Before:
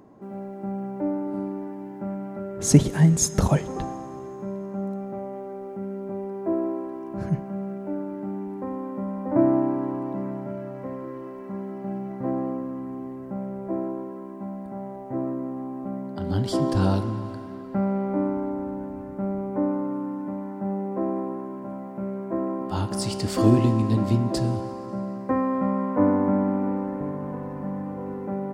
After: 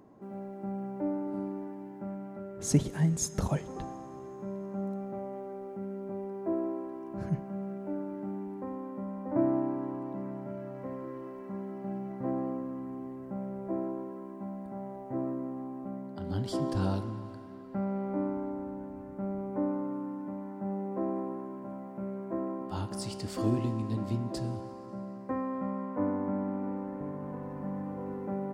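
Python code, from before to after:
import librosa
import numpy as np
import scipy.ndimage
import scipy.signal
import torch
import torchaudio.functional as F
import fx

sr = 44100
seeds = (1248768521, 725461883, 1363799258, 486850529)

y = fx.rider(x, sr, range_db=4, speed_s=2.0)
y = F.gain(torch.from_numpy(y), -9.0).numpy()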